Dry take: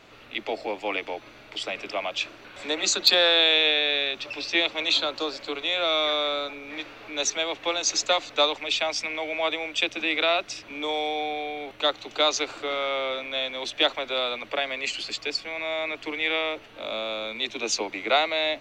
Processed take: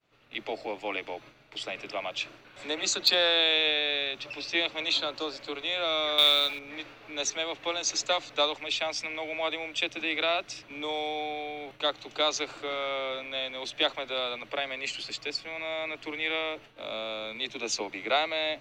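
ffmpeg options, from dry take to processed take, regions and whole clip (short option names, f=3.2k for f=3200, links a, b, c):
-filter_complex "[0:a]asettb=1/sr,asplit=3[a][b][c];[a]atrim=end=6.184[d];[b]atrim=start=6.18:end=6.59,asetpts=PTS-STARTPTS,afade=t=in:d=0.004:c=qsin,afade=t=out:st=0.406:d=0.004:c=qsin,equalizer=f=3.8k:w=0.66:g=14,acrusher=bits=5:mode=log:mix=0:aa=0.000001[e];[c]atrim=start=6.586[f];[d][e]acrossfade=d=0.004:c1=hsin:c2=qsin[g];[g][f]acrossfade=d=0.004:c1=qsin:c2=hsin,equalizer=f=140:w=6.8:g=14,agate=range=-33dB:threshold=-41dB:ratio=3:detection=peak,volume=-4.5dB"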